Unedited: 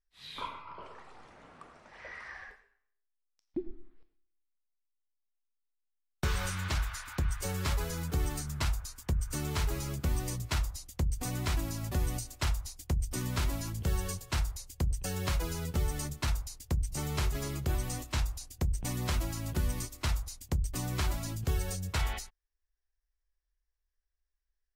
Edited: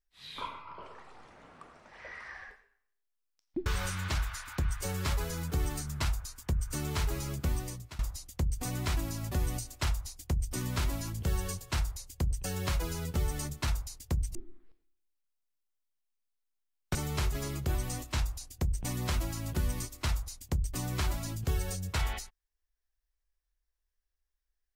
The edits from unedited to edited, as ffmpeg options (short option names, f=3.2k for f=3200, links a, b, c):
-filter_complex "[0:a]asplit=5[a][b][c][d][e];[a]atrim=end=3.662[f];[b]atrim=start=6.258:end=10.59,asetpts=PTS-STARTPTS,afade=t=out:st=3.832:d=0.5:silence=0.0891251[g];[c]atrim=start=10.59:end=16.952,asetpts=PTS-STARTPTS,afade=t=in:d=0.004:c=hsin:silence=0.0891251[h];[d]atrim=start=3.658:end=6.262[i];[e]atrim=start=16.948[j];[g][h]concat=n=2:v=0:a=1[k];[f][k]acrossfade=d=0.004:c1=hsin:c2=hsin[l];[l][i]acrossfade=d=0.004:c1=hsin:c2=hsin[m];[m][j]acrossfade=d=0.004:c1=hsin:c2=hsin"